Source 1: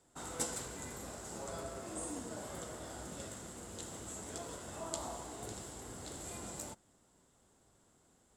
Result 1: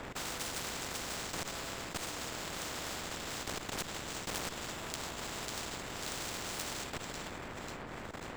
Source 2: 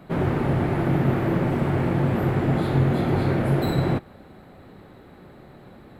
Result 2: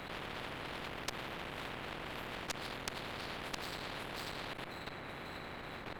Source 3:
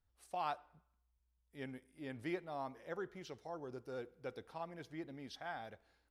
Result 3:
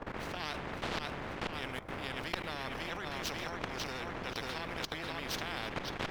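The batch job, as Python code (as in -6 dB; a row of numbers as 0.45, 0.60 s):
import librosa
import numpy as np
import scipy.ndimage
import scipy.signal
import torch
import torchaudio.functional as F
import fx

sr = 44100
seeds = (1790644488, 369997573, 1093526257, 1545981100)

p1 = scipy.signal.medfilt(x, 5)
p2 = fx.dmg_wind(p1, sr, seeds[0], corner_hz=270.0, level_db=-42.0)
p3 = fx.high_shelf(p2, sr, hz=3400.0, db=-10.5)
p4 = fx.hum_notches(p3, sr, base_hz=50, count=4)
p5 = p4 + fx.echo_feedback(p4, sr, ms=543, feedback_pct=36, wet_db=-7.5, dry=0)
p6 = fx.level_steps(p5, sr, step_db=18)
p7 = fx.cheby_harmonics(p6, sr, harmonics=(7, 8), levels_db=(-13, -8), full_scale_db=-9.5)
p8 = fx.over_compress(p7, sr, threshold_db=-49.0, ratio=-1.0)
p9 = p7 + (p8 * librosa.db_to_amplitude(2.5))
p10 = 10.0 ** (-25.5 / 20.0) * np.tanh(p9 / 10.0 ** (-25.5 / 20.0))
p11 = fx.spectral_comp(p10, sr, ratio=4.0)
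y = p11 * librosa.db_to_amplitude(8.5)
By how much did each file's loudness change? +4.5, -20.0, +7.5 LU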